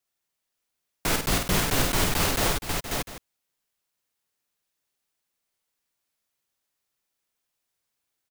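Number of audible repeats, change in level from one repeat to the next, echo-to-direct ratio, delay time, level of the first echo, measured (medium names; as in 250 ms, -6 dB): 5, no regular repeats, -0.5 dB, 50 ms, -4.5 dB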